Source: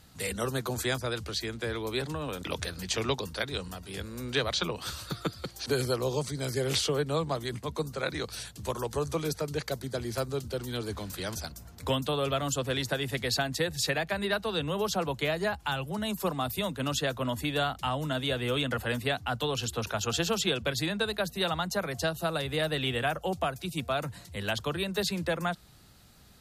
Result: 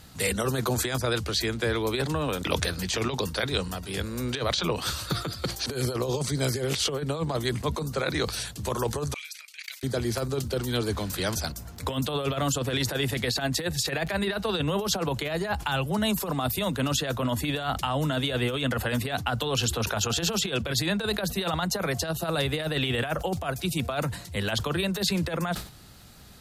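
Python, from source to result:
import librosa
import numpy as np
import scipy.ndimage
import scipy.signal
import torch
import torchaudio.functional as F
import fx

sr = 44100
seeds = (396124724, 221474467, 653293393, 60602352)

y = fx.over_compress(x, sr, threshold_db=-31.0, ratio=-0.5)
y = fx.dmg_crackle(y, sr, seeds[0], per_s=14.0, level_db=-47.0)
y = fx.ladder_highpass(y, sr, hz=2100.0, resonance_pct=65, at=(9.14, 9.83))
y = fx.sustainer(y, sr, db_per_s=120.0)
y = y * 10.0 ** (5.0 / 20.0)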